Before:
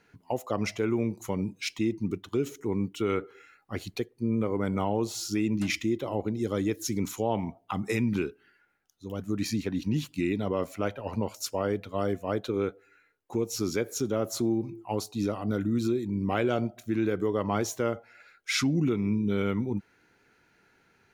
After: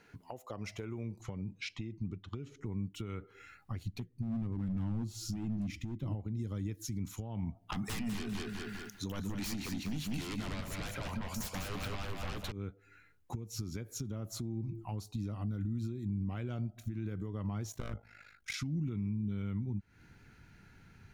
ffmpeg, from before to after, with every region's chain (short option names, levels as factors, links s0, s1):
-filter_complex "[0:a]asettb=1/sr,asplit=3[s0][s1][s2];[s0]atrim=end=1.214[s3];[s1]atrim=start=1.21:end=2.66,asetpts=PTS-STARTPTS,afade=t=in:d=0.004:c=qsin,afade=t=out:st=1.446:d=0.004:c=qsin,lowpass=4600,bandreject=f=950:w=16[s4];[s2]atrim=start=2.656[s5];[s3][s4]acrossfade=d=0.004:c1=hsin:c2=qsin[s6];[s6][s5]acrossfade=d=0.004:c1=qsin:c2=hsin,asettb=1/sr,asplit=3[s7][s8][s9];[s7]atrim=end=3.834[s10];[s8]atrim=start=3.83:end=6.15,asetpts=PTS-STARTPTS,afade=t=in:d=0.004:c=qsin,afade=t=out:st=2.316:d=0.004:c=qsin,lowshelf=f=350:t=q:w=1.5:g=8,flanger=delay=2.4:depth=4.4:regen=68:speed=1.5:shape=sinusoidal,asoftclip=type=hard:threshold=0.0708[s11];[s9]atrim=start=6.146[s12];[s10][s11]acrossfade=d=0.004:c1=hsin:c2=qsin[s13];[s13][s12]acrossfade=d=0.004:c1=qsin:c2=hsin,asettb=1/sr,asplit=3[s14][s15][s16];[s14]atrim=end=7.724[s17];[s15]atrim=start=7.72:end=12.52,asetpts=PTS-STARTPTS,afade=t=in:d=0.004:c=qsin,afade=t=out:st=4.796:d=0.004:c=qsin,highpass=f=830:p=1,aeval=exprs='0.119*sin(PI/2*7.08*val(0)/0.119)':c=same,aecho=1:1:198|396|594|792:0.562|0.163|0.0473|0.0137,atrim=end_sample=211680[s18];[s16]atrim=start=12.516[s19];[s17][s18]acrossfade=d=0.004:c1=hsin:c2=qsin[s20];[s20][s19]acrossfade=d=0.004:c1=qsin:c2=hsin,asettb=1/sr,asplit=3[s21][s22][s23];[s21]atrim=end=17.724[s24];[s22]atrim=start=17.72:end=18.54,asetpts=PTS-STARTPTS,afade=t=in:d=0.004:c=qsin,afade=t=out:st=0.816:d=0.004:c=qsin,aeval=exprs='0.075*(abs(mod(val(0)/0.075+3,4)-2)-1)':c=same,tremolo=f=51:d=0.824[s25];[s23]atrim=start=18.536[s26];[s24][s25]acrossfade=d=0.004:c1=hsin:c2=qsin[s27];[s27][s26]acrossfade=d=0.004:c1=qsin:c2=hsin,acompressor=threshold=0.01:ratio=6,asubboost=boost=8.5:cutoff=150,alimiter=level_in=2:limit=0.0631:level=0:latency=1:release=249,volume=0.501,volume=1.19"